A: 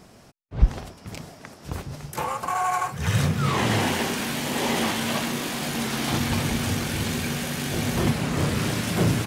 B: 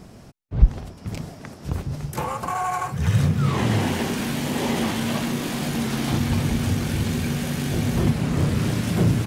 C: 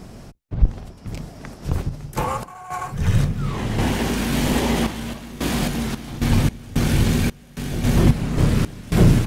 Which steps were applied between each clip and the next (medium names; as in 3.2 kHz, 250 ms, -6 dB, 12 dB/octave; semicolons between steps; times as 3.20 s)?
bass shelf 350 Hz +9.5 dB; in parallel at +2.5 dB: compression, threshold -25 dBFS, peak gain reduction 22.5 dB; on the sum: trim -7 dB
octave divider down 2 oct, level -4 dB; random-step tremolo 3.7 Hz, depth 95%; trim +5 dB